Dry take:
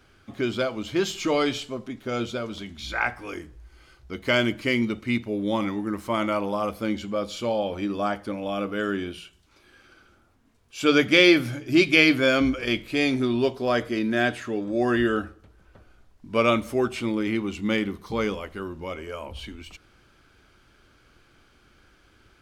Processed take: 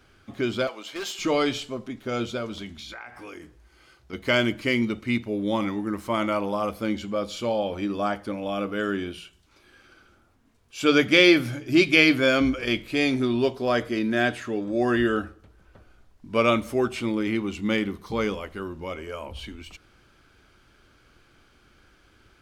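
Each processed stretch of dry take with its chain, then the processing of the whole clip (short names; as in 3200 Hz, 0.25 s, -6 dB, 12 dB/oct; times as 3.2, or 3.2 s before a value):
0.67–1.19 HPF 580 Hz + hard clip -28.5 dBFS
2.78–4.13 HPF 150 Hz 6 dB/oct + compressor 10:1, threshold -36 dBFS
whole clip: dry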